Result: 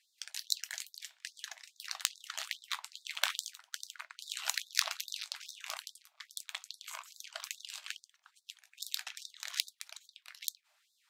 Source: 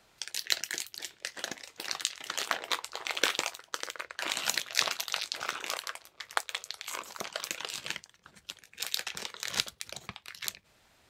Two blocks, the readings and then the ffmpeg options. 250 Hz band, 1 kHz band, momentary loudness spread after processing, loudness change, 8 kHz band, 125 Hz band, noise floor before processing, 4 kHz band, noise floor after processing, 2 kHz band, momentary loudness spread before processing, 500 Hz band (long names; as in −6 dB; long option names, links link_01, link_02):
below −40 dB, −9.5 dB, 13 LU, −5.5 dB, −4.5 dB, below −40 dB, −66 dBFS, −5.0 dB, −77 dBFS, −7.0 dB, 11 LU, −15.5 dB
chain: -af "aeval=exprs='0.596*(cos(1*acos(clip(val(0)/0.596,-1,1)))-cos(1*PI/2))+0.188*(cos(2*acos(clip(val(0)/0.596,-1,1)))-cos(2*PI/2))+0.106*(cos(3*acos(clip(val(0)/0.596,-1,1)))-cos(3*PI/2))+0.015*(cos(8*acos(clip(val(0)/0.596,-1,1)))-cos(8*PI/2))':channel_layout=same,afftfilt=real='re*gte(b*sr/1024,560*pow(3600/560,0.5+0.5*sin(2*PI*2.4*pts/sr)))':imag='im*gte(b*sr/1024,560*pow(3600/560,0.5+0.5*sin(2*PI*2.4*pts/sr)))':win_size=1024:overlap=0.75"